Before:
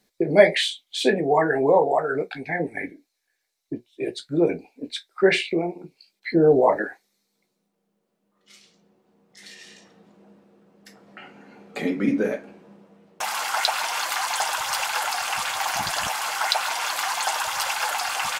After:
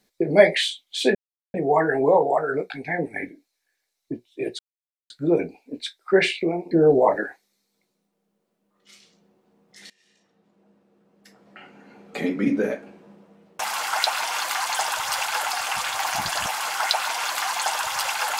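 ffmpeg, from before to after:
-filter_complex "[0:a]asplit=5[a][b][c][d][e];[a]atrim=end=1.15,asetpts=PTS-STARTPTS,afade=t=out:st=1.146:d=0.004:c=hsin,apad=pad_dur=0.39[f];[b]atrim=start=1.15:end=4.2,asetpts=PTS-STARTPTS,afade=t=in:d=0.004:c=hsin,afade=t=out:st=3.046:d=0.004:c=hsin,apad=pad_dur=0.51[g];[c]atrim=start=4.2:end=5.812,asetpts=PTS-STARTPTS,afade=t=in:d=0.004:c=hsin[h];[d]atrim=start=6.318:end=9.51,asetpts=PTS-STARTPTS,afade=t=out:st=3.188:d=0.004:c=hsin:silence=0.0668344[i];[e]atrim=start=9.51,asetpts=PTS-STARTPTS,afade=t=in:d=2.27:silence=0.0668344[j];[f][g][h]concat=n=3:v=0:a=1[k];[i][j]concat=n=2:v=0:a=1[l];[k][l]acrossfade=d=0.004:c1=hsin:c2=hsin"

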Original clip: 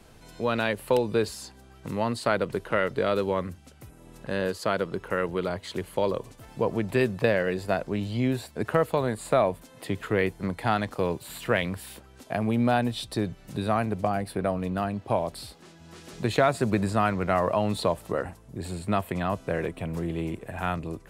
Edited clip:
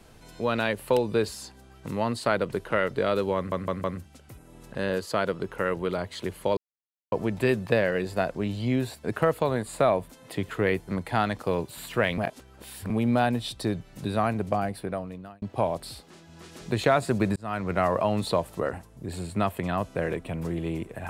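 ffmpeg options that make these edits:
-filter_complex "[0:a]asplit=10[a][b][c][d][e][f][g][h][i][j];[a]atrim=end=3.522[k];[b]atrim=start=3.358:end=3.522[l];[c]atrim=start=3.358:end=3.522[m];[d]atrim=start=3.358:end=6.09,asetpts=PTS-STARTPTS,afade=t=out:st=2.728:d=0.004:c=hsin[n];[e]atrim=start=6.09:end=6.64,asetpts=PTS-STARTPTS,volume=0[o];[f]atrim=start=6.64:end=11.702,asetpts=PTS-STARTPTS,afade=t=in:d=0.004:c=hsin[p];[g]atrim=start=11.698:end=12.422,asetpts=PTS-STARTPTS,areverse[q];[h]atrim=start=12.418:end=14.94,asetpts=PTS-STARTPTS,afade=t=out:st=1.702:d=0.82[r];[i]atrim=start=14.94:end=16.88,asetpts=PTS-STARTPTS,afade=t=in:d=0.004:c=hsin,afade=t=out:st=1.936:d=0.004:c=hsin[s];[j]atrim=start=16.88,asetpts=PTS-STARTPTS,afade=t=in:d=0.37[t];[k][l]acrossfade=d=0.004:c1=hsin:c2=hsin[u];[u][m]acrossfade=d=0.004:c1=hsin:c2=hsin[v];[n][o][p]concat=n=3:v=0:a=1[w];[v][w]acrossfade=d=0.004:c1=hsin:c2=hsin[x];[x][q]acrossfade=d=0.004:c1=hsin:c2=hsin[y];[r][s][t]concat=n=3:v=0:a=1[z];[y][z]acrossfade=d=0.004:c1=hsin:c2=hsin"

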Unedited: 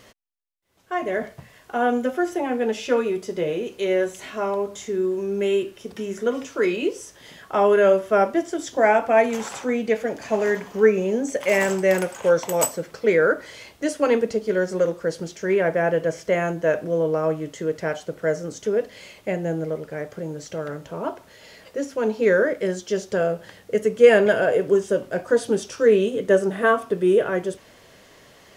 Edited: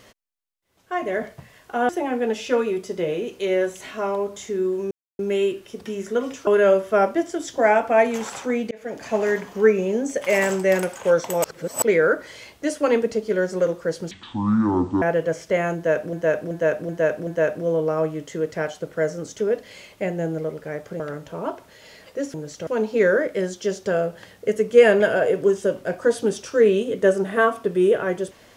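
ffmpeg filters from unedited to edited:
-filter_complex "[0:a]asplit=16[a][b][c][d][e][f][g][h][i][j][k][l][m][n][o][p];[a]atrim=end=1.892[q];[b]atrim=start=2.278:end=5.3,asetpts=PTS-STARTPTS,afade=t=out:st=3.018:d=0.004:c=hsin,apad=pad_dur=0.28[r];[c]atrim=start=5.3:end=6.582,asetpts=PTS-STARTPTS,afade=t=in:d=0.004:c=hsin[s];[d]atrim=start=7.658:end=9.9,asetpts=PTS-STARTPTS,afade=t=out:st=2.238:d=0.004:c=hsin[t];[e]atrim=start=9.9:end=12.632,asetpts=PTS-STARTPTS,afade=t=in:d=0.32[u];[f]atrim=start=12.628:end=13.012,asetpts=PTS-STARTPTS,areverse[v];[g]atrim=start=13.008:end=15.304[w];[h]atrim=start=15.3:end=15.8,asetpts=PTS-STARTPTS,asetrate=24255,aresample=44100[x];[i]atrim=start=15.796:end=16.912[y];[j]atrim=start=16.528:end=16.912[z];[k]atrim=start=16.528:end=16.912[aa];[l]atrim=start=16.528:end=16.912[ab];[m]atrim=start=16.528:end=20.262[ac];[n]atrim=start=20.588:end=21.932[ad];[o]atrim=start=20.258:end=20.592[ae];[p]atrim=start=21.928[af];[r][s]concat=n=2:v=0:a=1[ag];[q][ag]acrossfade=d=0.004:c1=hsin:c2=hsin[ah];[t][u]concat=n=2:v=0:a=1[ai];[ah][ai]acrossfade=d=0.004:c1=hsin:c2=hsin[aj];[aj][v]acrossfade=d=0.004:c1=hsin:c2=hsin[ak];[ak][w]acrossfade=d=0.004:c1=hsin:c2=hsin[al];[al][x]acrossfade=d=0.004:c1=hsin:c2=hsin[am];[am][y]acrossfade=d=0.004:c1=hsin:c2=hsin[an];[an][z]acrossfade=d=0.004:c1=hsin:c2=hsin[ao];[ao][aa]acrossfade=d=0.004:c1=hsin:c2=hsin[ap];[ap][ab]acrossfade=d=0.004:c1=hsin:c2=hsin[aq];[aq][ac]acrossfade=d=0.004:c1=hsin:c2=hsin[ar];[ar][ad]acrossfade=d=0.004:c1=hsin:c2=hsin[as];[as][ae]acrossfade=d=0.004:c1=hsin:c2=hsin[at];[at][af]acrossfade=d=0.004:c1=hsin:c2=hsin"

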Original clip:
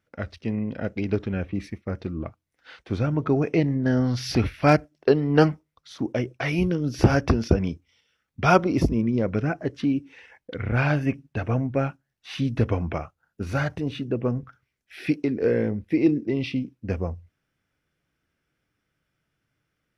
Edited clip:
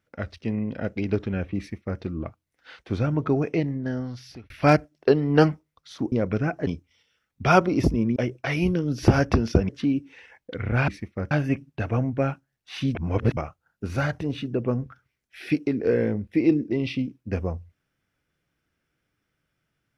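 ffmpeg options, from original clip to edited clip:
-filter_complex "[0:a]asplit=10[a][b][c][d][e][f][g][h][i][j];[a]atrim=end=4.5,asetpts=PTS-STARTPTS,afade=t=out:st=3.21:d=1.29[k];[b]atrim=start=4.5:end=6.122,asetpts=PTS-STARTPTS,afade=t=in:d=0.004:c=hsin[l];[c]atrim=start=9.138:end=9.692[m];[d]atrim=start=7.648:end=9.142[n];[e]atrim=start=6.118:end=7.652[o];[f]atrim=start=9.688:end=10.882[p];[g]atrim=start=1.578:end=2.012[q];[h]atrim=start=10.878:end=12.522[r];[i]atrim=start=12.518:end=12.942,asetpts=PTS-STARTPTS,areverse[s];[j]atrim=start=12.938[t];[k][l]concat=n=2:v=0:a=1[u];[u][m]acrossfade=d=0.004:c1=hsin:c2=hsin[v];[v][n]acrossfade=d=0.004:c1=hsin:c2=hsin[w];[w][o]acrossfade=d=0.004:c1=hsin:c2=hsin[x];[x][p]acrossfade=d=0.004:c1=hsin:c2=hsin[y];[y][q]acrossfade=d=0.004:c1=hsin:c2=hsin[z];[z][r]acrossfade=d=0.004:c1=hsin:c2=hsin[aa];[aa][s]acrossfade=d=0.004:c1=hsin:c2=hsin[ab];[ab][t]acrossfade=d=0.004:c1=hsin:c2=hsin"

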